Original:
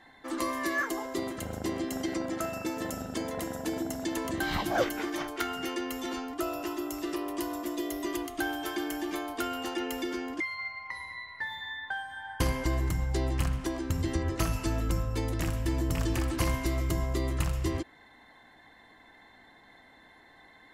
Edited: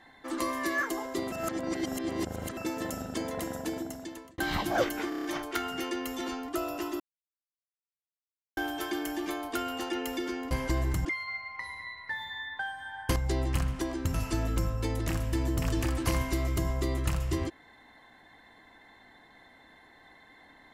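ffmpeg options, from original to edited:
ffmpeg -i in.wav -filter_complex "[0:a]asplit=15[link_01][link_02][link_03][link_04][link_05][link_06][link_07][link_08][link_09][link_10][link_11][link_12][link_13][link_14][link_15];[link_01]atrim=end=1.322[link_16];[link_02]atrim=start=1.318:end=2.572,asetpts=PTS-STARTPTS,areverse[link_17];[link_03]atrim=start=2.568:end=4.38,asetpts=PTS-STARTPTS,afade=type=out:start_time=1.002:duration=0.81[link_18];[link_04]atrim=start=4.38:end=5.122,asetpts=PTS-STARTPTS,afade=type=in:duration=0.004:curve=hsin[link_19];[link_05]atrim=start=5.088:end=5.122[link_20];[link_06]atrim=start=5.088:end=5.122[link_21];[link_07]atrim=start=5.088:end=5.122[link_22];[link_08]atrim=start=5.088:end=5.122[link_23];[link_09]atrim=start=5.088:end=6.85,asetpts=PTS-STARTPTS,afade=type=out:start_time=1.758:duration=0.004:curve=hsin[link_24];[link_10]atrim=start=6.85:end=8.42,asetpts=PTS-STARTPTS,volume=0[link_25];[link_11]atrim=start=8.42:end=10.362,asetpts=PTS-STARTPTS,afade=type=in:duration=0.004:curve=hsin[link_26];[link_12]atrim=start=12.468:end=13.012[link_27];[link_13]atrim=start=10.358:end=12.472[link_28];[link_14]atrim=start=13.008:end=13.992[link_29];[link_15]atrim=start=14.468[link_30];[link_16][link_17]acrossfade=duration=0.004:curve1=hsin:curve2=hsin[link_31];[link_18][link_19]concat=n=2:v=0:a=1[link_32];[link_31][link_32]acrossfade=duration=0.004:curve1=hsin:curve2=hsin[link_33];[link_33][link_20]acrossfade=duration=0.004:curve1=hsin:curve2=hsin[link_34];[link_34][link_21]acrossfade=duration=0.004:curve1=hsin:curve2=hsin[link_35];[link_35][link_22]acrossfade=duration=0.004:curve1=hsin:curve2=hsin[link_36];[link_36][link_23]acrossfade=duration=0.004:curve1=hsin:curve2=hsin[link_37];[link_24][link_25][link_26]concat=n=3:v=0:a=1[link_38];[link_37][link_38]acrossfade=duration=0.004:curve1=hsin:curve2=hsin[link_39];[link_39][link_27]acrossfade=duration=0.004:curve1=hsin:curve2=hsin[link_40];[link_40][link_28]acrossfade=duration=0.004:curve1=hsin:curve2=hsin[link_41];[link_41][link_29]acrossfade=duration=0.004:curve1=hsin:curve2=hsin[link_42];[link_42][link_30]acrossfade=duration=0.004:curve1=hsin:curve2=hsin" out.wav

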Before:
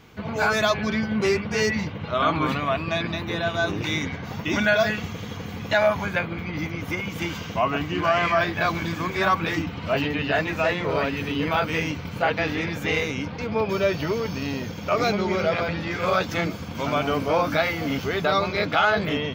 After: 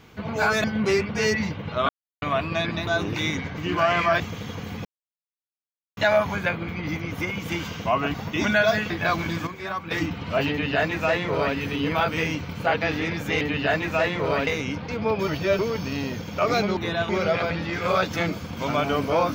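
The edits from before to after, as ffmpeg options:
ffmpeg -i in.wav -filter_complex "[0:a]asplit=18[link_01][link_02][link_03][link_04][link_05][link_06][link_07][link_08][link_09][link_10][link_11][link_12][link_13][link_14][link_15][link_16][link_17][link_18];[link_01]atrim=end=0.642[link_19];[link_02]atrim=start=0.998:end=2.25,asetpts=PTS-STARTPTS,afade=type=out:start_time=1.248:duration=0.004:curve=hsin[link_20];[link_03]atrim=start=2.25:end=2.58,asetpts=PTS-STARTPTS,volume=0[link_21];[link_04]atrim=start=2.58:end=3.232,asetpts=PTS-STARTPTS,afade=type=in:duration=0.004:curve=hsin[link_22];[link_05]atrim=start=3.548:end=4.262[link_23];[link_06]atrim=start=7.838:end=8.462[link_24];[link_07]atrim=start=5.018:end=5.67,asetpts=PTS-STARTPTS,afade=type=out:start_time=0.648:duration=0.004:curve=hsin,apad=pad_dur=1.12[link_25];[link_08]atrim=start=5.67:end=7.842,asetpts=PTS-STARTPTS,afade=type=in:duration=0.004:curve=hsin[link_26];[link_09]atrim=start=4.258:end=5.022[link_27];[link_10]atrim=start=8.458:end=9.032[link_28];[link_11]atrim=start=9.028:end=9.472,asetpts=PTS-STARTPTS,volume=-9.5dB[link_29];[link_12]atrim=start=9.468:end=12.972[link_30];[link_13]atrim=start=10.058:end=11.122[link_31];[link_14]atrim=start=12.968:end=13.782[link_32];[link_15]atrim=start=13.778:end=14.092,asetpts=PTS-STARTPTS,areverse[link_33];[link_16]atrim=start=14.088:end=15.272[link_34];[link_17]atrim=start=3.228:end=3.552[link_35];[link_18]atrim=start=15.268[link_36];[link_20][link_21][link_22]concat=n=3:v=0:a=1[link_37];[link_19][link_37]acrossfade=duration=0.004:curve1=hsin:curve2=hsin[link_38];[link_38][link_23]acrossfade=duration=0.004:curve1=hsin:curve2=hsin[link_39];[link_39][link_24]acrossfade=duration=0.004:curve1=hsin:curve2=hsin[link_40];[link_25][link_26]concat=n=2:v=0:a=1[link_41];[link_40][link_41]acrossfade=duration=0.004:curve1=hsin:curve2=hsin[link_42];[link_42][link_27]acrossfade=duration=0.004:curve1=hsin:curve2=hsin[link_43];[link_43][link_28]acrossfade=duration=0.004:curve1=hsin:curve2=hsin[link_44];[link_44][link_29]acrossfade=duration=0.004:curve1=hsin:curve2=hsin[link_45];[link_45][link_30]acrossfade=duration=0.004:curve1=hsin:curve2=hsin[link_46];[link_46][link_31]acrossfade=duration=0.004:curve1=hsin:curve2=hsin[link_47];[link_47][link_32]acrossfade=duration=0.004:curve1=hsin:curve2=hsin[link_48];[link_48][link_33]acrossfade=duration=0.004:curve1=hsin:curve2=hsin[link_49];[link_49][link_34]acrossfade=duration=0.004:curve1=hsin:curve2=hsin[link_50];[link_50][link_35]acrossfade=duration=0.004:curve1=hsin:curve2=hsin[link_51];[link_51][link_36]acrossfade=duration=0.004:curve1=hsin:curve2=hsin" out.wav

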